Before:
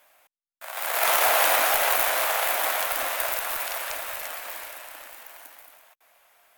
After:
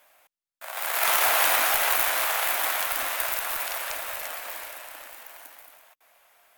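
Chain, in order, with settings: dynamic EQ 560 Hz, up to -6 dB, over -38 dBFS, Q 1.3

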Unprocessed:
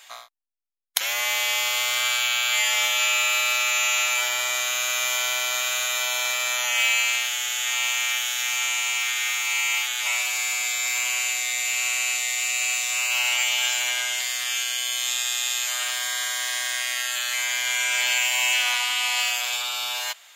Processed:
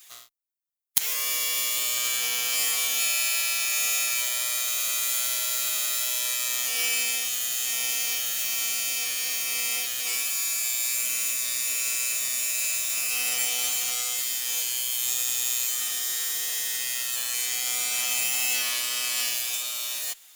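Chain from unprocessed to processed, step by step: minimum comb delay 6.5 ms; RIAA curve recording; gain -9.5 dB

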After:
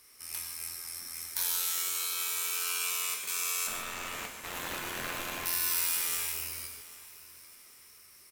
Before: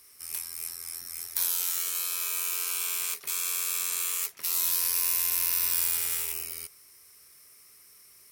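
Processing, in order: 3.67–5.46 median filter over 9 samples; high shelf 7400 Hz -6.5 dB; notches 60/120/180/240/300/360/420 Hz; feedback echo 0.793 s, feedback 37%, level -18 dB; on a send at -3 dB: reverb, pre-delay 3 ms

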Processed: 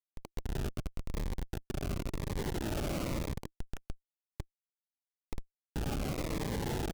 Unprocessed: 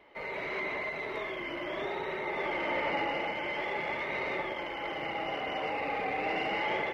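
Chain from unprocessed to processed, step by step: rattling part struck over -49 dBFS, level -25 dBFS; 3.49–5.76 brick-wall FIR high-pass 780 Hz; feedback echo 61 ms, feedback 24%, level -11 dB; upward compressor, threshold -35 dBFS; LPF 3400 Hz 12 dB/oct; tilt -3.5 dB/oct; Schroeder reverb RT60 1.5 s, combs from 29 ms, DRR 18 dB; Schmitt trigger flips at -27 dBFS; cascading phaser falling 0.96 Hz

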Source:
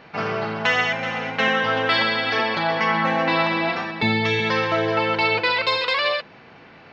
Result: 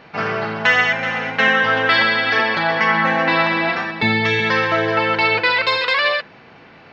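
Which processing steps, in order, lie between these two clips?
dynamic EQ 1700 Hz, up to +6 dB, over -36 dBFS, Q 2.2; gain +2 dB

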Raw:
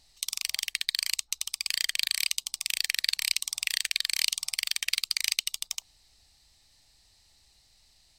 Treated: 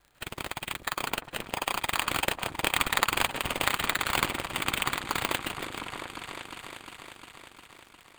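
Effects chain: local time reversal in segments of 51 ms; Doppler pass-by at 3.23, 7 m/s, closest 5.9 m; LPF 12000 Hz 12 dB/oct; in parallel at +1 dB: vocal rider within 5 dB; on the sum: notch comb 220 Hz; sample-rate reducer 5700 Hz, jitter 0%; crackle 56/s -41 dBFS; on a send: repeats that get brighter 0.354 s, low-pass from 400 Hz, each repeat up 2 oct, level -6 dB; on the sum: gain -1 dB

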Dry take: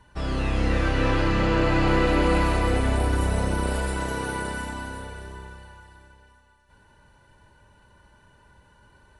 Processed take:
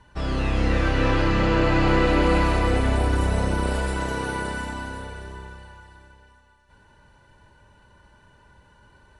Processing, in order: LPF 8700 Hz 12 dB/oct; gain +1.5 dB

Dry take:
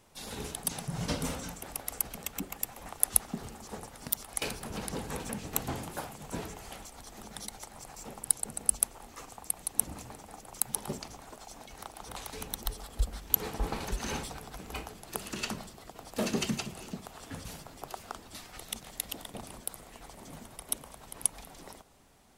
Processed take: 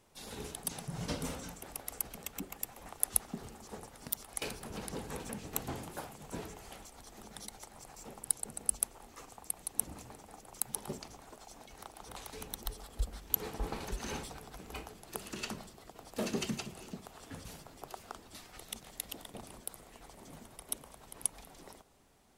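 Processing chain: bell 390 Hz +2.5 dB 0.72 oct; gain -5 dB

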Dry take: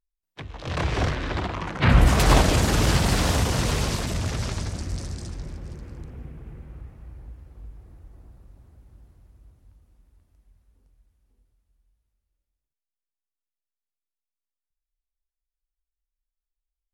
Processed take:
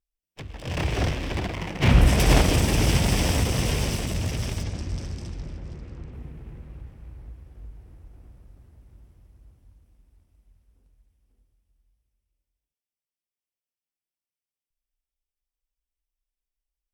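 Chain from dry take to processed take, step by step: minimum comb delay 0.36 ms; 4.63–6.13 LPF 6400 Hz 12 dB/oct

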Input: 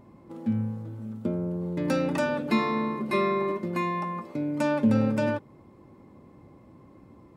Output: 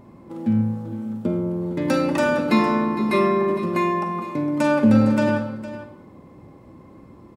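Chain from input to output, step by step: echo 0.459 s -14 dB; Schroeder reverb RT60 0.62 s, combs from 33 ms, DRR 6.5 dB; gain +5.5 dB

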